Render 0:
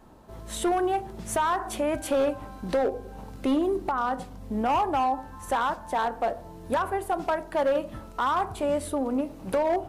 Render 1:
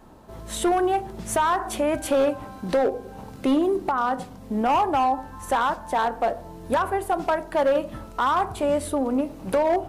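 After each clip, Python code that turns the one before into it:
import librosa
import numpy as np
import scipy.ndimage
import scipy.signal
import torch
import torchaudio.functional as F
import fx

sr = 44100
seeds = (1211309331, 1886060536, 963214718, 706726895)

y = fx.hum_notches(x, sr, base_hz=50, count=2)
y = F.gain(torch.from_numpy(y), 3.5).numpy()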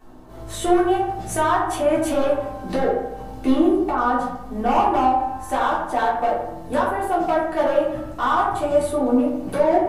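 y = fx.echo_wet_lowpass(x, sr, ms=83, feedback_pct=49, hz=2100.0, wet_db=-6.0)
y = fx.room_shoebox(y, sr, seeds[0], volume_m3=210.0, walls='furnished', distance_m=3.5)
y = F.gain(torch.from_numpy(y), -6.0).numpy()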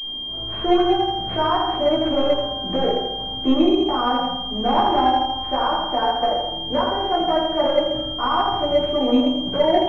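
y = x + 10.0 ** (-9.5 / 20.0) * np.pad(x, (int(134 * sr / 1000.0), 0))[:len(x)]
y = fx.pwm(y, sr, carrier_hz=3200.0)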